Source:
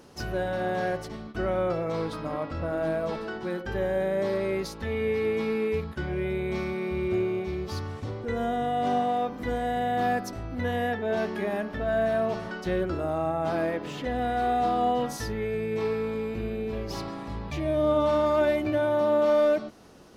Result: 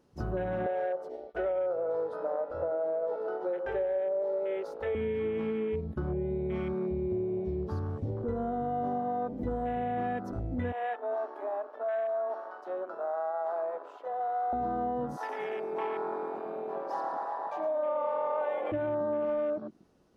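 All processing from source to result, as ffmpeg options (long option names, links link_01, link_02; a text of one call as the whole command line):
ffmpeg -i in.wav -filter_complex "[0:a]asettb=1/sr,asplit=3[link_01][link_02][link_03];[link_01]atrim=end=0.664[link_04];[link_02]atrim=start=0.66:end=4.95,asetpts=PTS-STARTPTS,afade=type=in:duration=0.004:curve=qsin,afade=type=out:start_time=4.286:duration=0.004:curve=qsin,lowshelf=frequency=340:width_type=q:width=3:gain=-13.5,bandreject=frequency=1100:width=7.6[link_05];[link_03]atrim=start=4.946[link_06];[link_04][link_05]acrossfade=duration=0.004:curve1=hsin:curve2=qsin[link_07];[link_07][link_06]acrossfade=duration=0.004:curve1=qsin:curve2=hsin,asettb=1/sr,asplit=3[link_08][link_09][link_10];[link_08]atrim=end=10.724[link_11];[link_09]atrim=start=10.72:end=14.53,asetpts=PTS-STARTPTS,afade=type=in:duration=0.004:curve=qsin,afade=type=out:start_time=3.806:duration=0.004:curve=qsin,highpass=frequency=670:width=0.5412,highpass=frequency=670:width=1.3066,tiltshelf=frequency=890:gain=6[link_12];[link_10]atrim=start=14.526[link_13];[link_11][link_12]acrossfade=duration=0.004:curve1=hsin:curve2=qsin[link_14];[link_14][link_13]acrossfade=duration=0.004:curve1=qsin:curve2=hsin,asettb=1/sr,asplit=3[link_15][link_16][link_17];[link_15]atrim=end=15.174[link_18];[link_16]atrim=start=15.17:end=18.72,asetpts=PTS-STARTPTS,afade=type=in:duration=0.004:curve=qsin,afade=type=out:start_time=3.546:duration=0.004:curve=qsin,highpass=frequency=790:width_type=q:width=3.4,asplit=8[link_19][link_20][link_21][link_22][link_23][link_24][link_25][link_26];[link_20]adelay=113,afreqshift=-42,volume=-8.5dB[link_27];[link_21]adelay=226,afreqshift=-84,volume=-13.1dB[link_28];[link_22]adelay=339,afreqshift=-126,volume=-17.7dB[link_29];[link_23]adelay=452,afreqshift=-168,volume=-22.2dB[link_30];[link_24]adelay=565,afreqshift=-210,volume=-26.8dB[link_31];[link_25]adelay=678,afreqshift=-252,volume=-31.4dB[link_32];[link_26]adelay=791,afreqshift=-294,volume=-36dB[link_33];[link_19][link_27][link_28][link_29][link_30][link_31][link_32][link_33]amix=inputs=8:normalize=0,atrim=end_sample=156555[link_34];[link_17]atrim=start=18.716[link_35];[link_18][link_34]acrossfade=duration=0.004:curve1=hsin:curve2=qsin[link_36];[link_36][link_35]acrossfade=duration=0.004:curve1=qsin:curve2=hsin,afwtdn=0.0158,tiltshelf=frequency=970:gain=3,acompressor=threshold=-29dB:ratio=6" out.wav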